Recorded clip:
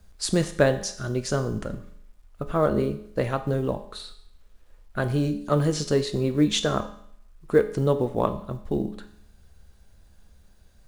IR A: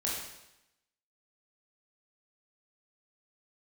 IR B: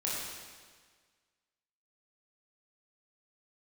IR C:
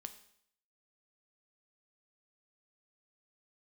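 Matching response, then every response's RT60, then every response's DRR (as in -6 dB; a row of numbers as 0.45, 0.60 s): C; 0.90, 1.6, 0.65 s; -5.0, -6.5, 8.0 dB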